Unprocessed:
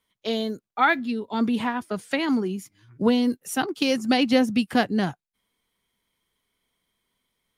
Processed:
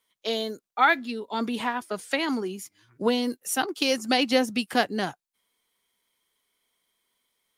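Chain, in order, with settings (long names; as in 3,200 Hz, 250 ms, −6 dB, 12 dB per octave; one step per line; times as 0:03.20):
bass and treble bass −12 dB, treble +4 dB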